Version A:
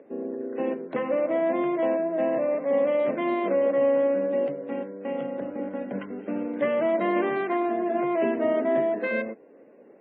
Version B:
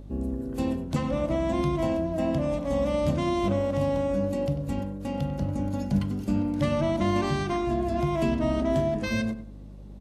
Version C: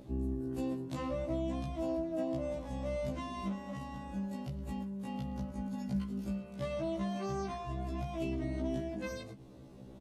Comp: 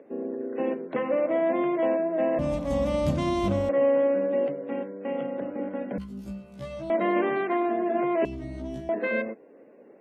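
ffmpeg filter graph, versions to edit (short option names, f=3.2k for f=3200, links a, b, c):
-filter_complex "[2:a]asplit=2[a][b];[0:a]asplit=4[c][d][e][f];[c]atrim=end=2.392[g];[1:a]atrim=start=2.388:end=3.692[h];[d]atrim=start=3.688:end=5.982[i];[a]atrim=start=5.978:end=6.902[j];[e]atrim=start=6.898:end=8.252[k];[b]atrim=start=8.248:end=8.892[l];[f]atrim=start=8.888[m];[g][h]acrossfade=d=0.004:c1=hsin:c2=hsin[n];[n][i]acrossfade=d=0.004:c1=hsin:c2=hsin[o];[o][j]acrossfade=d=0.004:c1=hsin:c2=hsin[p];[p][k]acrossfade=d=0.004:c1=hsin:c2=hsin[q];[q][l]acrossfade=d=0.004:c1=hsin:c2=hsin[r];[r][m]acrossfade=d=0.004:c1=hsin:c2=hsin"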